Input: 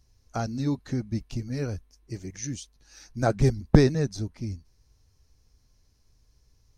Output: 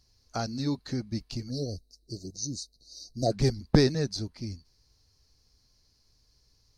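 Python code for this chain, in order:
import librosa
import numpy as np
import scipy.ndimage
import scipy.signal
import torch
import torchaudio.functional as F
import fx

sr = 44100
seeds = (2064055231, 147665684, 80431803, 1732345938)

p1 = fx.low_shelf(x, sr, hz=130.0, db=-5.5)
p2 = fx.spec_erase(p1, sr, start_s=1.5, length_s=1.82, low_hz=740.0, high_hz=3700.0)
p3 = fx.peak_eq(p2, sr, hz=4500.0, db=12.5, octaves=0.43)
p4 = 10.0 ** (-15.0 / 20.0) * np.tanh(p3 / 10.0 ** (-15.0 / 20.0))
p5 = p3 + (p4 * librosa.db_to_amplitude(-8.5))
y = p5 * librosa.db_to_amplitude(-4.0)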